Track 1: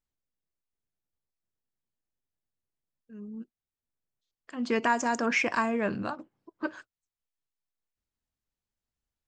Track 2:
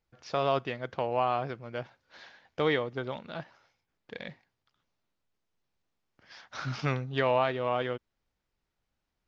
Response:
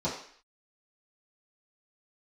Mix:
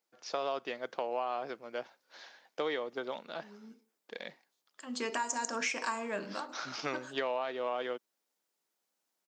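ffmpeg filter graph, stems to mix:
-filter_complex "[0:a]adelay=300,volume=0.531,asplit=2[s0][s1];[s1]volume=0.168[s2];[1:a]highshelf=f=2400:g=-9,volume=1[s3];[2:a]atrim=start_sample=2205[s4];[s2][s4]afir=irnorm=-1:irlink=0[s5];[s0][s3][s5]amix=inputs=3:normalize=0,highpass=f=180:w=0.5412,highpass=f=180:w=1.3066,bass=f=250:g=-12,treble=f=4000:g=15,acompressor=threshold=0.0316:ratio=6"

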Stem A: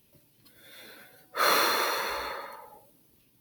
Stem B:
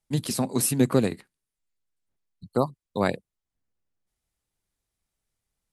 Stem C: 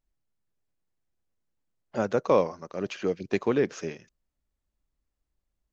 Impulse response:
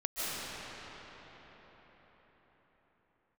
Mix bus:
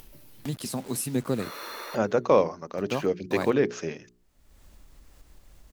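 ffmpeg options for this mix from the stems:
-filter_complex "[0:a]volume=0.126[s0];[1:a]acrusher=bits=6:mix=0:aa=0.000001,adelay=350,volume=0.473[s1];[2:a]bandreject=f=60:t=h:w=6,bandreject=f=120:t=h:w=6,bandreject=f=180:t=h:w=6,bandreject=f=240:t=h:w=6,bandreject=f=300:t=h:w=6,bandreject=f=360:t=h:w=6,bandreject=f=420:t=h:w=6,volume=1.26,asplit=2[s2][s3];[s3]apad=whole_len=150005[s4];[s0][s4]sidechaincompress=threshold=0.0158:ratio=12:attack=16:release=483[s5];[s5][s1][s2]amix=inputs=3:normalize=0,acompressor=mode=upward:threshold=0.0355:ratio=2.5"

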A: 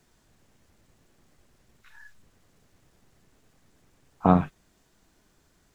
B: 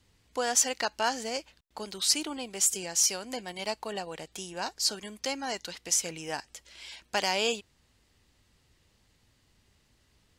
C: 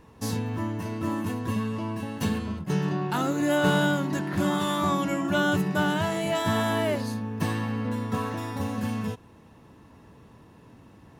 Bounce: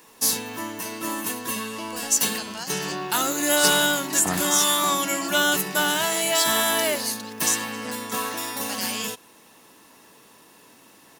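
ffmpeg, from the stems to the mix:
-filter_complex "[0:a]volume=0.282[s0];[1:a]adelay=1550,volume=0.211[s1];[2:a]highpass=300,volume=1[s2];[s0][s1][s2]amix=inputs=3:normalize=0,crystalizer=i=6.5:c=0"

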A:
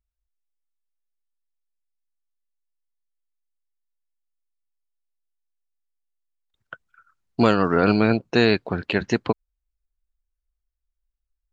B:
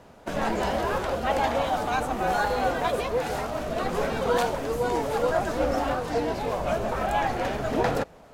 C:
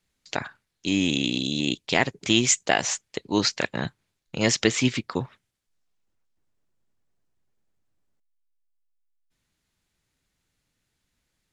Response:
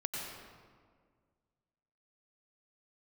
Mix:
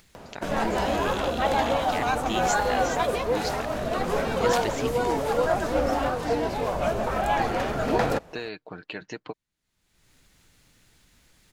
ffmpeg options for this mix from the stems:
-filter_complex "[0:a]lowshelf=f=210:g=-10,aecho=1:1:6.5:0.44,acompressor=threshold=0.112:ratio=6,volume=0.282[s0];[1:a]adelay=150,volume=1.12[s1];[2:a]volume=0.266[s2];[s0][s1][s2]amix=inputs=3:normalize=0,acompressor=mode=upward:threshold=0.0141:ratio=2.5"

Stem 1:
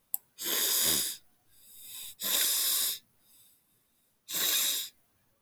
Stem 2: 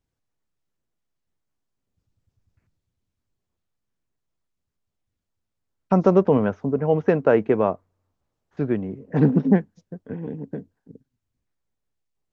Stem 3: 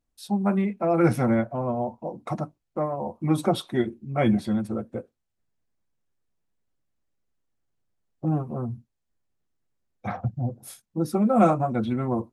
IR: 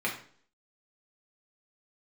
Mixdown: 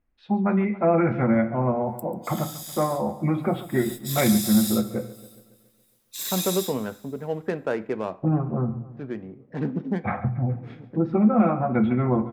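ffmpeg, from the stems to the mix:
-filter_complex "[0:a]acompressor=threshold=0.00447:ratio=1.5,adelay=1850,volume=0.75,afade=t=in:st=3.69:d=0.22:silence=0.334965,asplit=2[s0][s1];[s1]volume=0.126[s2];[1:a]adynamicsmooth=sensitivity=5:basefreq=2200,adelay=400,volume=0.282,asplit=2[s3][s4];[s4]volume=0.141[s5];[2:a]lowpass=f=2300:w=0.5412,lowpass=f=2300:w=1.3066,lowshelf=f=170:g=6,alimiter=limit=0.168:level=0:latency=1:release=362,volume=1,asplit=4[s6][s7][s8][s9];[s7]volume=0.251[s10];[s8]volume=0.188[s11];[s9]apad=whole_len=561172[s12];[s3][s12]sidechaincompress=threshold=0.0224:ratio=8:attack=16:release=464[s13];[3:a]atrim=start_sample=2205[s14];[s5][s10]amix=inputs=2:normalize=0[s15];[s15][s14]afir=irnorm=-1:irlink=0[s16];[s2][s11]amix=inputs=2:normalize=0,aecho=0:1:139|278|417|556|695|834|973|1112|1251:1|0.57|0.325|0.185|0.106|0.0602|0.0343|0.0195|0.0111[s17];[s0][s13][s6][s16][s17]amix=inputs=5:normalize=0,highshelf=f=2100:g=9.5"

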